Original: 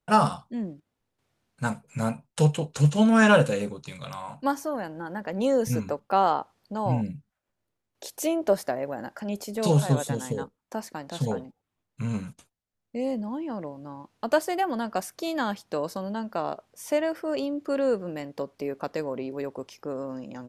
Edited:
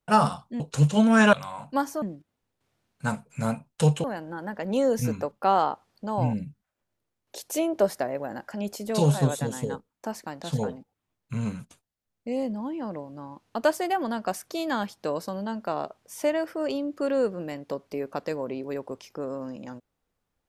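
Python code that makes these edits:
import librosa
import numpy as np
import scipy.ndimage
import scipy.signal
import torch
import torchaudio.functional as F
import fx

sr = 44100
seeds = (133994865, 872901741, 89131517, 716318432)

y = fx.edit(x, sr, fx.move(start_s=0.6, length_s=2.02, to_s=4.72),
    fx.cut(start_s=3.35, length_s=0.68), tone=tone)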